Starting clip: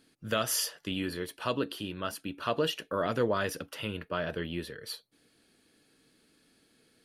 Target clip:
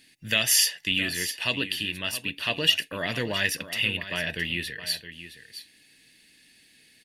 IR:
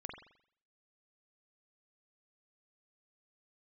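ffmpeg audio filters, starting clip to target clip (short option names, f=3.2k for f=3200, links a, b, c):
-filter_complex "[0:a]highshelf=f=1.6k:t=q:w=3:g=9,aecho=1:1:1.1:0.38,asplit=2[a][b];[b]aecho=0:1:667:0.237[c];[a][c]amix=inputs=2:normalize=0"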